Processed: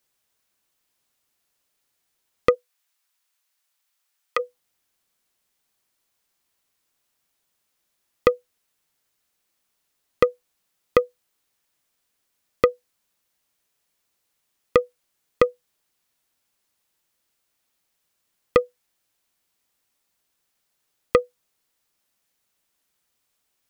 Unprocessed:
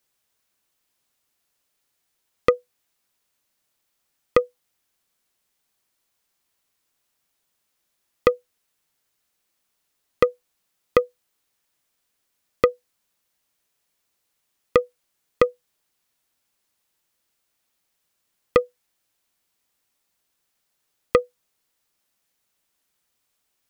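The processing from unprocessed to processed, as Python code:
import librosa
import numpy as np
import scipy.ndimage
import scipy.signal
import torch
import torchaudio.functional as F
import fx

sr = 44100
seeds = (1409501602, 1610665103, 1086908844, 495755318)

y = fx.highpass(x, sr, hz=920.0, slope=12, at=(2.54, 4.38), fade=0.02)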